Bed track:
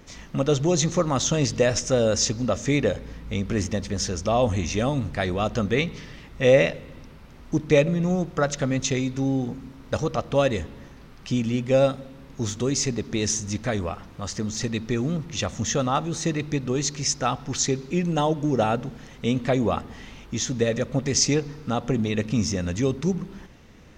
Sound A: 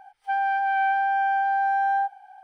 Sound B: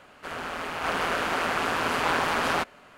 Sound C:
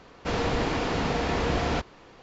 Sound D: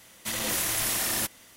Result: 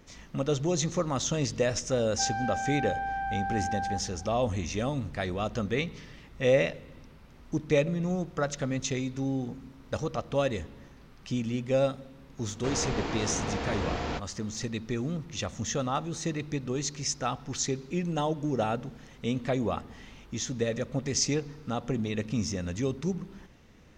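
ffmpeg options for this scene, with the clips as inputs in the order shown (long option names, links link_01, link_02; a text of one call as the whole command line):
ffmpeg -i bed.wav -i cue0.wav -i cue1.wav -i cue2.wav -filter_complex "[0:a]volume=-6.5dB[link_01];[1:a]acompressor=threshold=-26dB:ratio=6:attack=3.2:release=140:knee=1:detection=peak,atrim=end=2.43,asetpts=PTS-STARTPTS,volume=-4dB,afade=type=in:duration=0.004:curve=hsin,afade=type=out:start_time=2.426:duration=0.004:curve=hsin,adelay=1910[link_02];[3:a]atrim=end=2.22,asetpts=PTS-STARTPTS,volume=-6dB,afade=type=in:duration=0.004:curve=hsin,afade=type=out:start_time=2.216:duration=0.004:curve=hsin,adelay=12380[link_03];[link_01][link_02][link_03]amix=inputs=3:normalize=0" out.wav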